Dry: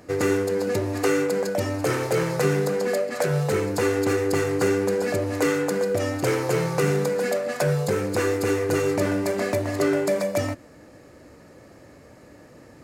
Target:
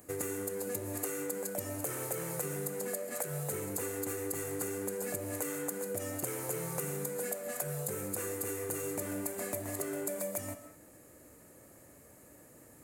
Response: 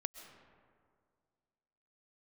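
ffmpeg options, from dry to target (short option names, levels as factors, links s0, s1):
-filter_complex "[0:a]aexciter=amount=11.7:drive=2.1:freq=7300,acompressor=threshold=0.0708:ratio=6[s0];[1:a]atrim=start_sample=2205,afade=t=out:st=0.27:d=0.01,atrim=end_sample=12348[s1];[s0][s1]afir=irnorm=-1:irlink=0,volume=0.376"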